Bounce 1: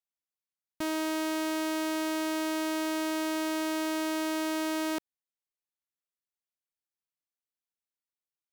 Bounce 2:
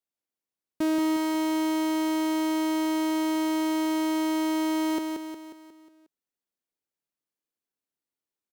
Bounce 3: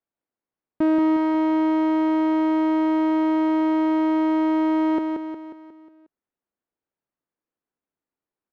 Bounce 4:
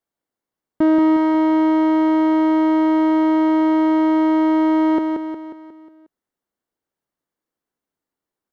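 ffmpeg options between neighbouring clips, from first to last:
-filter_complex "[0:a]equalizer=f=320:t=o:w=2:g=10,asplit=2[s0][s1];[s1]aecho=0:1:180|360|540|720|900|1080:0.562|0.287|0.146|0.0746|0.038|0.0194[s2];[s0][s2]amix=inputs=2:normalize=0,volume=0.841"
-af "lowpass=1600,volume=2"
-af "bandreject=f=2500:w=11,volume=1.68"

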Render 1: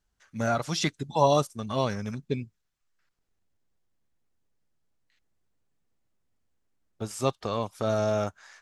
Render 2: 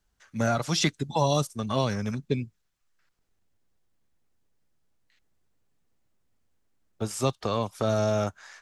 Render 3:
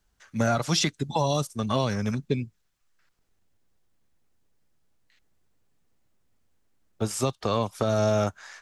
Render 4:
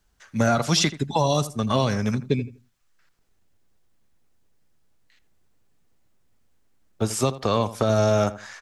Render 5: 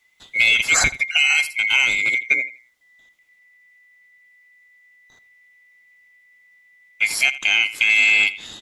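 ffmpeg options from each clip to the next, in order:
-filter_complex "[0:a]acrossover=split=220|3000[s0][s1][s2];[s1]acompressor=threshold=0.0447:ratio=4[s3];[s0][s3][s2]amix=inputs=3:normalize=0,volume=1.5"
-af "alimiter=limit=0.15:level=0:latency=1:release=266,volume=1.41"
-filter_complex "[0:a]asplit=2[s0][s1];[s1]adelay=82,lowpass=f=2100:p=1,volume=0.188,asplit=2[s2][s3];[s3]adelay=82,lowpass=f=2100:p=1,volume=0.25,asplit=2[s4][s5];[s5]adelay=82,lowpass=f=2100:p=1,volume=0.25[s6];[s0][s2][s4][s6]amix=inputs=4:normalize=0,volume=1.5"
-af "afftfilt=real='real(if(lt(b,920),b+92*(1-2*mod(floor(b/92),2)),b),0)':imag='imag(if(lt(b,920),b+92*(1-2*mod(floor(b/92),2)),b),0)':win_size=2048:overlap=0.75,volume=1.58"

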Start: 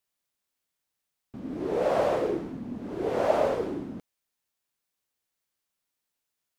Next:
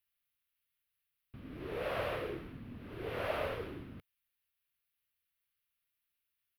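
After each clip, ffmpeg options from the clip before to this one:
-af "firequalizer=gain_entry='entry(100,0);entry(190,-13);entry(300,-14);entry(450,-12);entry(820,-15);entry(1200,-5);entry(2700,1);entry(7200,-22);entry(11000,0)':delay=0.05:min_phase=1"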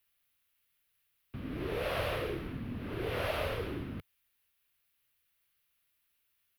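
-filter_complex "[0:a]acrossover=split=120|3000[s0][s1][s2];[s1]acompressor=threshold=0.00631:ratio=2.5[s3];[s0][s3][s2]amix=inputs=3:normalize=0,volume=2.66"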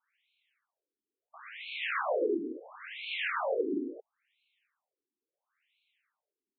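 -af "afftfilt=real='re*between(b*sr/1024,300*pow(3100/300,0.5+0.5*sin(2*PI*0.73*pts/sr))/1.41,300*pow(3100/300,0.5+0.5*sin(2*PI*0.73*pts/sr))*1.41)':imag='im*between(b*sr/1024,300*pow(3100/300,0.5+0.5*sin(2*PI*0.73*pts/sr))/1.41,300*pow(3100/300,0.5+0.5*sin(2*PI*0.73*pts/sr))*1.41)':win_size=1024:overlap=0.75,volume=2.82"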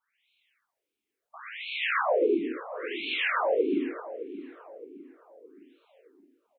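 -filter_complex "[0:a]dynaudnorm=f=140:g=3:m=1.88,asplit=2[s0][s1];[s1]adelay=616,lowpass=f=1200:p=1,volume=0.237,asplit=2[s2][s3];[s3]adelay=616,lowpass=f=1200:p=1,volume=0.48,asplit=2[s4][s5];[s5]adelay=616,lowpass=f=1200:p=1,volume=0.48,asplit=2[s6][s7];[s7]adelay=616,lowpass=f=1200:p=1,volume=0.48,asplit=2[s8][s9];[s9]adelay=616,lowpass=f=1200:p=1,volume=0.48[s10];[s0][s2][s4][s6][s8][s10]amix=inputs=6:normalize=0"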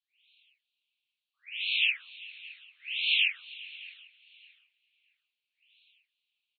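-filter_complex "[0:a]asuperpass=centerf=3300:order=8:qfactor=1.7,asplit=4[s0][s1][s2][s3];[s1]adelay=398,afreqshift=51,volume=0.1[s4];[s2]adelay=796,afreqshift=102,volume=0.0372[s5];[s3]adelay=1194,afreqshift=153,volume=0.0136[s6];[s0][s4][s5][s6]amix=inputs=4:normalize=0,volume=2.37"

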